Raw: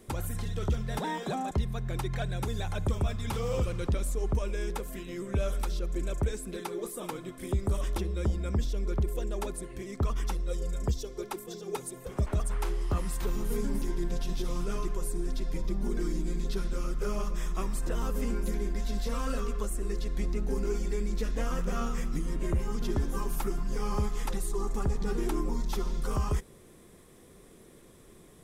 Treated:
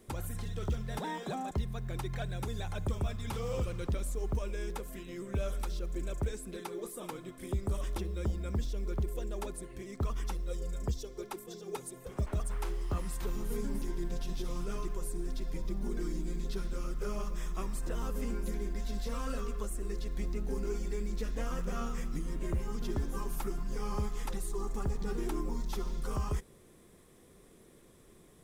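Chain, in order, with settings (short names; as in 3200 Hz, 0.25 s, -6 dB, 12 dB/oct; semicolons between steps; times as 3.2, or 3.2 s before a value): companded quantiser 8-bit; gain -4.5 dB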